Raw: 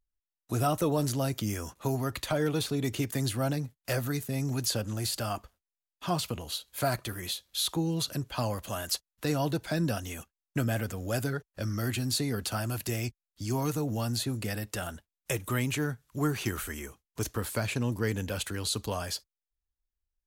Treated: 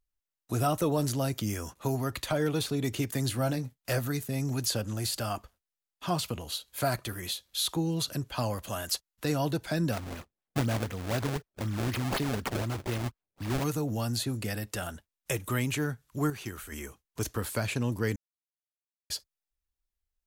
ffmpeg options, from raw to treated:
-filter_complex "[0:a]asettb=1/sr,asplit=3[a][b][c];[a]atrim=end=3.264[d];[b]atrim=start=3.26:end=3.99,asetpts=PTS-STARTPTS,afade=t=in:d=0.004:c=qsin,afade=t=out:st=0.726:d=0.004:c=qsin,asplit=2[e][f];[f]adelay=24,volume=-12dB[g];[e][g]amix=inputs=2:normalize=0,atrim=end_sample=32193[h];[c]atrim=start=3.986[i];[d][h]acrossfade=d=0.004:c1=hsin:c2=qsin[j];[j][i]acrossfade=d=0.004:c1=qsin:c2=hsin,asplit=3[k][l][m];[k]afade=t=out:st=9.91:d=0.02[n];[l]acrusher=samples=26:mix=1:aa=0.000001:lfo=1:lforange=41.6:lforate=4,afade=t=in:st=9.91:d=0.02,afade=t=out:st=13.63:d=0.02[o];[m]afade=t=in:st=13.63:d=0.02[p];[n][o][p]amix=inputs=3:normalize=0,asplit=5[q][r][s][t][u];[q]atrim=end=16.302[v];[r]atrim=start=16.298:end=16.722,asetpts=PTS-STARTPTS,volume=-7dB[w];[s]atrim=start=16.718:end=18.16,asetpts=PTS-STARTPTS,afade=t=out:st=1.438:d=0.004:c=hsin[x];[t]atrim=start=18.16:end=19.1,asetpts=PTS-STARTPTS,volume=0[y];[u]atrim=start=19.1,asetpts=PTS-STARTPTS,afade=t=in:d=0.004:c=hsin[z];[v][w]acrossfade=d=0.004:c1=hsin:c2=hsin[aa];[x][y][z]concat=n=3:v=0:a=1[ab];[aa][ab]acrossfade=d=0.004:c1=hsin:c2=hsin"

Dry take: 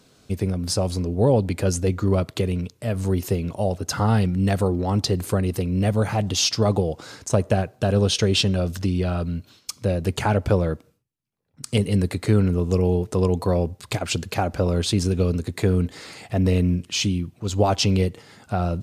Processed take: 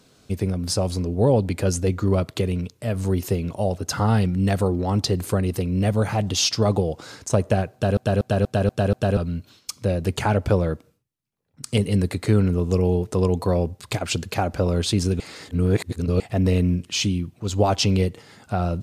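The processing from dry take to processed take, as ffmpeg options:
-filter_complex "[0:a]asplit=9[a][b][c][d][e][f][g][h][i];[a]atrim=end=7.972[j];[b]atrim=start=7.728:end=7.972[k];[c]atrim=start=7.728:end=7.972[l];[d]atrim=start=7.728:end=7.972[m];[e]atrim=start=7.728:end=7.972[n];[f]atrim=start=7.728:end=7.972[o];[g]atrim=start=9.168:end=15.202[p];[h]atrim=start=15.198:end=16.202,asetpts=PTS-STARTPTS,areverse[q];[i]atrim=start=16.198[r];[j][k]acrossfade=d=0.004:c1=hsin:c2=hsin[s];[s][l]acrossfade=d=0.004:c1=hsin:c2=hsin[t];[t][m]acrossfade=d=0.004:c1=hsin:c2=hsin[u];[u][n]acrossfade=d=0.004:c1=hsin:c2=hsin[v];[v][o]acrossfade=d=0.004:c1=hsin:c2=hsin[w];[w][p]acrossfade=d=0.004:c1=hsin:c2=hsin[x];[x][q]acrossfade=d=0.004:c1=hsin:c2=hsin[y];[y][r]acrossfade=d=0.004:c1=hsin:c2=hsin"

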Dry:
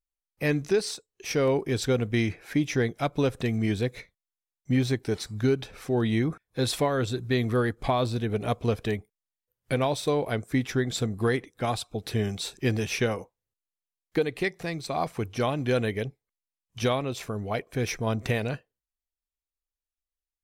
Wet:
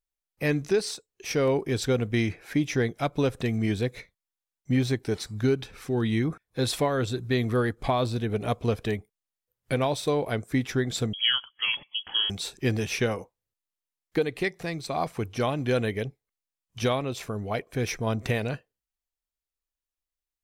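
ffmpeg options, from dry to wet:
-filter_complex "[0:a]asettb=1/sr,asplit=3[a][b][c];[a]atrim=end=5.624[d];[b]atrim=start=5.62:end=6.25,asetpts=PTS-STARTPTS,afade=t=in:d=0.004:c=qsin,afade=t=out:st=0.626:d=0.004:c=qsin,equalizer=f=620:t=o:w=0.7:g=-7.5[e];[c]atrim=start=6.246[f];[d][e]acrossfade=d=0.004:c1=hsin:c2=qsin[g];[g][f]acrossfade=d=0.004:c1=qsin:c2=hsin,asettb=1/sr,asplit=3[h][i][j];[h]atrim=end=11.134[k];[i]atrim=start=11.13:end=12.3,asetpts=PTS-STARTPTS,afade=t=in:d=0.004:c=qsin,afade=t=out:st=1.166:d=0.004:c=qsin,lowpass=f=2.9k:t=q:w=0.5098,lowpass=f=2.9k:t=q:w=0.6013,lowpass=f=2.9k:t=q:w=0.9,lowpass=f=2.9k:t=q:w=2.563,afreqshift=-3400[l];[j]atrim=start=12.296[m];[k][l]acrossfade=d=0.004:c1=hsin:c2=qsin[n];[n][m]acrossfade=d=0.004:c1=qsin:c2=hsin"

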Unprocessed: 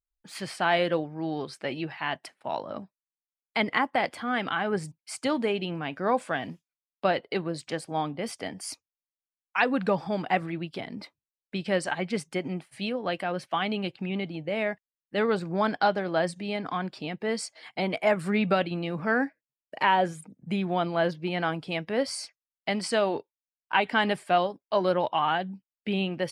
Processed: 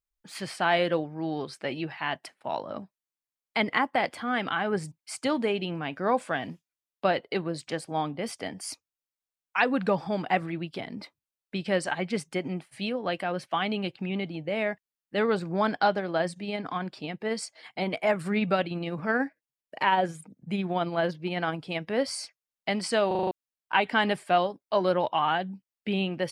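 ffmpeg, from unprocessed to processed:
-filter_complex "[0:a]asettb=1/sr,asplit=3[a][b][c];[a]atrim=end=15.994[d];[b]atrim=start=15.99:end=21.84,asetpts=PTS-STARTPTS,afade=t=in:d=0.004:c=qsin,afade=t=out:st=5.846:d=0.004:c=qsin,tremolo=f=18:d=0.29[e];[c]atrim=start=21.836[f];[d][e]acrossfade=d=0.004:c1=hsin:c2=qsin[g];[g][f]acrossfade=d=0.004:c1=qsin:c2=hsin,asplit=7[h][i][j][k][l][m][n];[h]atrim=end=23.112[o];[i]atrim=start=23.068:end=23.112[p];[j]atrim=start=23.068:end=23.112[q];[k]atrim=start=23.068:end=23.112[r];[l]atrim=start=23.068:end=23.112[s];[m]atrim=start=23.068:end=23.112[t];[n]atrim=start=23.308[u];[o][p]acrossfade=d=0.004:c1=hsin:c2=hsin[v];[v][q]acrossfade=d=0.004:c1=hsin:c2=hsin[w];[w][r]acrossfade=d=0.004:c1=hsin:c2=hsin[x];[x][s]acrossfade=d=0.004:c1=hsin:c2=hsin[y];[y][t]acrossfade=d=0.004:c1=hsin:c2=hsin[z];[z][u]acrossfade=d=0.004:c1=hsin:c2=hsin"

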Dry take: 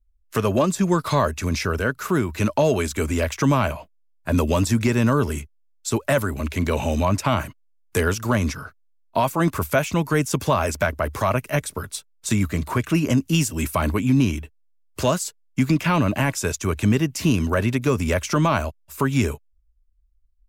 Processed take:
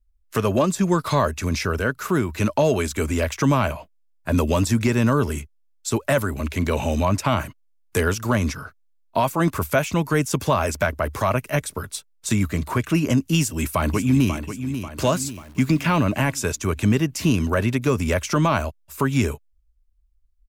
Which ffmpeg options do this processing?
-filter_complex "[0:a]asplit=2[a][b];[b]afade=t=in:st=13.39:d=0.01,afade=t=out:st=14.34:d=0.01,aecho=0:1:540|1080|1620|2160|2700|3240:0.334965|0.167483|0.0837414|0.0418707|0.0209353|0.0104677[c];[a][c]amix=inputs=2:normalize=0,asettb=1/sr,asplit=3[d][e][f];[d]atrim=end=15.154[g];[e]atrim=start=15.15:end=16.03,asetpts=PTS-STARTPTS,afade=t=in:d=0.004:c=qsin,afade=t=out:st=0.876:d=0.004:c=qsin,acrusher=bits=9:dc=4:mix=0:aa=0.000001[h];[f]atrim=start=16.026[i];[g][h]acrossfade=d=0.004:c1=hsin:c2=qsin[j];[j][i]acrossfade=d=0.004:c1=qsin:c2=hsin"

